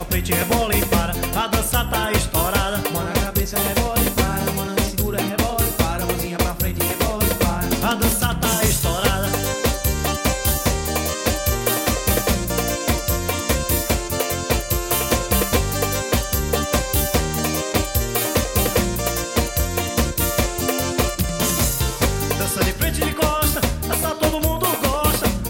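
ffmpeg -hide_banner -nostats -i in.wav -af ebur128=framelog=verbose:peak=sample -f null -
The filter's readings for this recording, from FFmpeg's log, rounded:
Integrated loudness:
  I:         -20.1 LUFS
  Threshold: -30.1 LUFS
Loudness range:
  LRA:         1.1 LU
  Threshold: -40.2 LUFS
  LRA low:   -20.6 LUFS
  LRA high:  -19.5 LUFS
Sample peak:
  Peak:       -8.1 dBFS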